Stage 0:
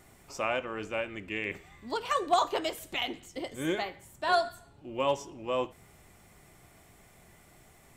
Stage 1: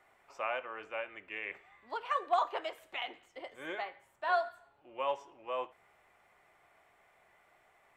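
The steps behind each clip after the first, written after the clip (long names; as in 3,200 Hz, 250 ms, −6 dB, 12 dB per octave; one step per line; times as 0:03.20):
three-way crossover with the lows and the highs turned down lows −21 dB, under 510 Hz, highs −18 dB, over 2,800 Hz
level −2.5 dB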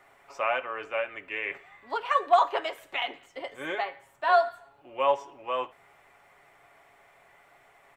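comb filter 7.2 ms, depth 38%
level +7.5 dB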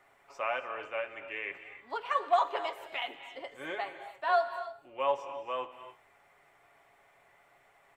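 reverb whose tail is shaped and stops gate 320 ms rising, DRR 11 dB
level −5.5 dB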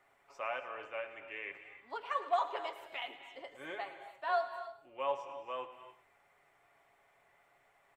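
single-tap delay 108 ms −15.5 dB
level −5.5 dB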